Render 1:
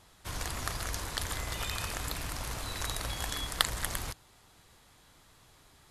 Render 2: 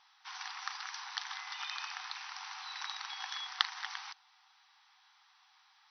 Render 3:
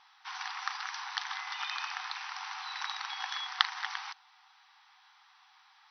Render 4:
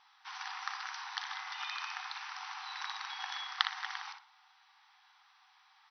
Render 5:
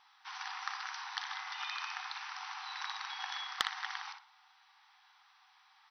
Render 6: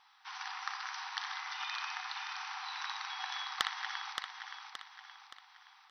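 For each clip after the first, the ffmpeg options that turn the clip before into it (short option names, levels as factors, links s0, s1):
-af "afftfilt=real='re*between(b*sr/4096,740,6100)':imag='im*between(b*sr/4096,740,6100)':win_size=4096:overlap=0.75,volume=0.75"
-af "highshelf=f=4900:g=-9.5,volume=2"
-filter_complex "[0:a]asplit=2[s0][s1];[s1]adelay=60,lowpass=f=3300:p=1,volume=0.531,asplit=2[s2][s3];[s3]adelay=60,lowpass=f=3300:p=1,volume=0.32,asplit=2[s4][s5];[s5]adelay=60,lowpass=f=3300:p=1,volume=0.32,asplit=2[s6][s7];[s7]adelay=60,lowpass=f=3300:p=1,volume=0.32[s8];[s0][s2][s4][s6][s8]amix=inputs=5:normalize=0,volume=0.631"
-af "asoftclip=type=tanh:threshold=0.224"
-af "aecho=1:1:572|1144|1716|2288|2860:0.473|0.208|0.0916|0.0403|0.0177"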